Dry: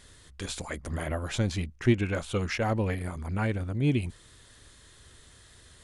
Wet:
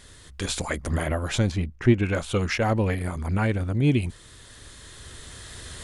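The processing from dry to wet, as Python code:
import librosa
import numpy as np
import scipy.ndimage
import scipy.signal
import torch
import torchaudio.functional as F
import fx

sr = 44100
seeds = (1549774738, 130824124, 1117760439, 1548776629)

y = fx.recorder_agc(x, sr, target_db=-19.5, rise_db_per_s=5.8, max_gain_db=30)
y = fx.high_shelf(y, sr, hz=fx.line((1.5, 2200.0), (2.02, 3400.0)), db=-10.5, at=(1.5, 2.02), fade=0.02)
y = y * librosa.db_to_amplitude(4.5)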